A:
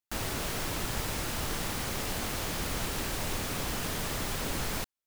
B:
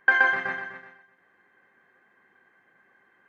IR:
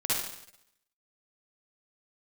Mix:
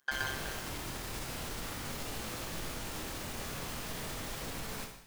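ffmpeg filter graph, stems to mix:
-filter_complex "[0:a]flanger=delay=18:depth=7.6:speed=0.43,alimiter=level_in=1.58:limit=0.0631:level=0:latency=1:release=26,volume=0.631,volume=0.531,asplit=2[s0][s1];[s1]volume=0.282[s2];[1:a]tremolo=f=140:d=0.974,aexciter=amount=15.8:drive=4.7:freq=3300,volume=0.237[s3];[2:a]atrim=start_sample=2205[s4];[s2][s4]afir=irnorm=-1:irlink=0[s5];[s0][s3][s5]amix=inputs=3:normalize=0"

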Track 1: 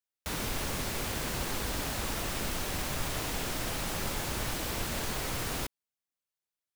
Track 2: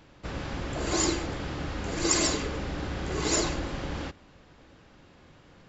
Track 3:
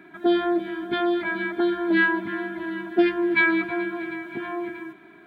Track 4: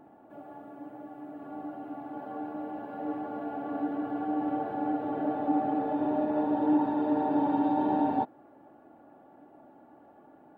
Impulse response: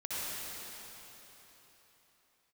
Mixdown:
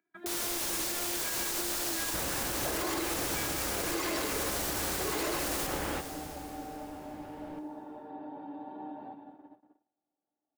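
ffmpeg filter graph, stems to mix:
-filter_complex "[0:a]bass=f=250:g=-12,treble=f=4000:g=9,volume=0.596,asplit=2[s0][s1];[s1]volume=0.398[s2];[1:a]lowpass=2900,adelay=1900,volume=1.33,asplit=2[s3][s4];[s4]volume=0.106[s5];[2:a]acompressor=mode=upward:threshold=0.00794:ratio=2.5,volume=0.422[s6];[3:a]acompressor=threshold=0.0178:ratio=6,adelay=900,volume=0.422,asplit=2[s7][s8];[s8]volume=0.376[s9];[s6][s7]amix=inputs=2:normalize=0,lowshelf=f=120:g=-9.5,acompressor=threshold=0.0112:ratio=6,volume=1[s10];[4:a]atrim=start_sample=2205[s11];[s2][s5][s9]amix=inputs=3:normalize=0[s12];[s12][s11]afir=irnorm=-1:irlink=0[s13];[s0][s3][s10][s13]amix=inputs=4:normalize=0,agate=range=0.0251:threshold=0.00316:ratio=16:detection=peak,acrossover=split=300[s14][s15];[s14]acompressor=threshold=0.0112:ratio=6[s16];[s16][s15]amix=inputs=2:normalize=0,alimiter=limit=0.0708:level=0:latency=1:release=59"

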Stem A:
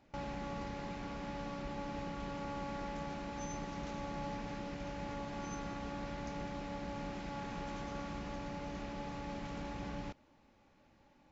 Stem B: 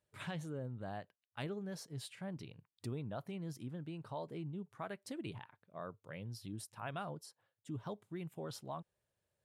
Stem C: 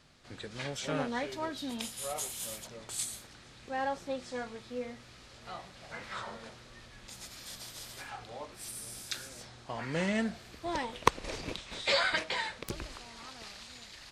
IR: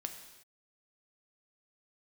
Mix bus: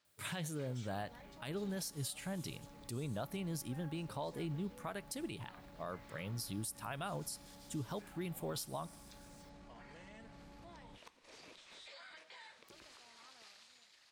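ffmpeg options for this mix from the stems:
-filter_complex "[0:a]acrossover=split=210[s0][s1];[s1]acompressor=threshold=0.00562:ratio=6[s2];[s0][s2]amix=inputs=2:normalize=0,afwtdn=0.002,adelay=850,volume=0.188[s3];[1:a]aemphasis=mode=production:type=75kf,adelay=50,volume=1.33,asplit=2[s4][s5];[s5]volume=0.158[s6];[2:a]highpass=f=540:p=1,acompressor=threshold=0.0112:ratio=6,volume=0.106,asplit=2[s7][s8];[s8]volume=0.708[s9];[s3][s7]amix=inputs=2:normalize=0,dynaudnorm=f=120:g=11:m=2.51,alimiter=level_in=18.8:limit=0.0631:level=0:latency=1:release=14,volume=0.0531,volume=1[s10];[3:a]atrim=start_sample=2205[s11];[s6][s9]amix=inputs=2:normalize=0[s12];[s12][s11]afir=irnorm=-1:irlink=0[s13];[s4][s10][s13]amix=inputs=3:normalize=0,alimiter=level_in=2.37:limit=0.0631:level=0:latency=1:release=125,volume=0.422"

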